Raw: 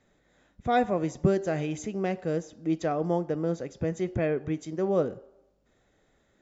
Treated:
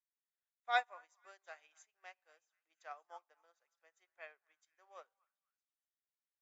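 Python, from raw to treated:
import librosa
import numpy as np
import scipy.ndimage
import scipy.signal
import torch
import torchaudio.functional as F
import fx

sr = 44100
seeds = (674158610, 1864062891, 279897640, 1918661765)

y = scipy.signal.sosfilt(scipy.signal.butter(4, 880.0, 'highpass', fs=sr, output='sos'), x)
y = fx.echo_stepped(y, sr, ms=241, hz=1200.0, octaves=0.7, feedback_pct=70, wet_db=-9.0)
y = fx.upward_expand(y, sr, threshold_db=-51.0, expansion=2.5)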